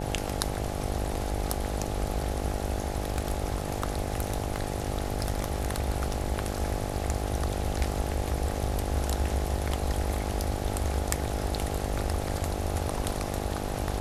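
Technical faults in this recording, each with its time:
buzz 50 Hz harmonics 17 -34 dBFS
2.78–6.24 clipped -20.5 dBFS

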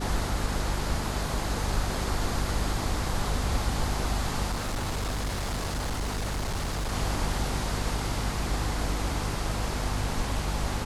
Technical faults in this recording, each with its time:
hum 50 Hz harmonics 5 -33 dBFS
4.51–6.93 clipped -26.5 dBFS

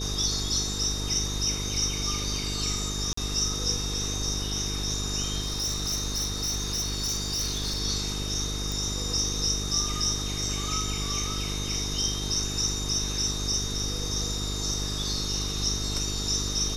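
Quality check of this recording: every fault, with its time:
buzz 50 Hz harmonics 9 -33 dBFS
tone 3700 Hz -36 dBFS
3.13–3.17 gap 44 ms
5.41–7.81 clipped -25 dBFS
8.72 pop

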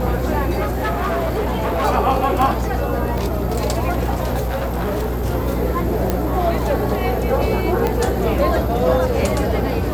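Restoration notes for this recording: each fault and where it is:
buzz 60 Hz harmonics 25 -23 dBFS
0.61–1.86 clipped -16.5 dBFS
3.18 pop
4.45–5.26 clipped -18 dBFS
6.1 pop -5 dBFS
7.87 pop -6 dBFS

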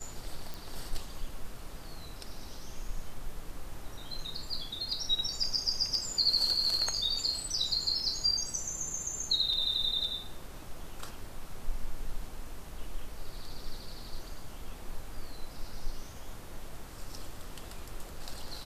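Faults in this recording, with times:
0.54 pop

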